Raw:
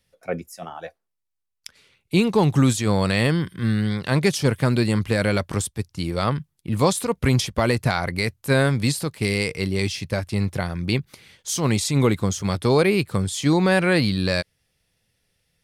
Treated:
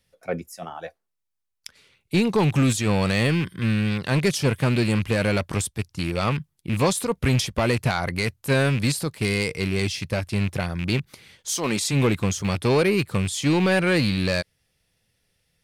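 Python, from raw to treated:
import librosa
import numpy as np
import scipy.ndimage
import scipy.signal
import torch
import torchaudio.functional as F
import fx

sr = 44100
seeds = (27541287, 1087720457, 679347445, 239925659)

y = fx.rattle_buzz(x, sr, strikes_db=-23.0, level_db=-21.0)
y = fx.highpass(y, sr, hz=fx.line((11.5, 380.0), (11.91, 130.0)), slope=12, at=(11.5, 11.91), fade=0.02)
y = 10.0 ** (-12.0 / 20.0) * np.tanh(y / 10.0 ** (-12.0 / 20.0))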